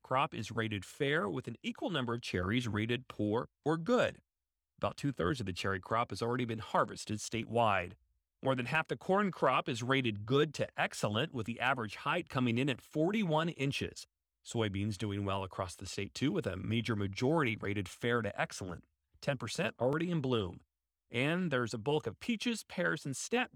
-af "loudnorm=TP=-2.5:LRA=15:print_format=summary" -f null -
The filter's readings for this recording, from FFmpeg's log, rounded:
Input Integrated:    -34.9 LUFS
Input True Peak:     -16.0 dBTP
Input LRA:             2.7 LU
Input Threshold:     -45.1 LUFS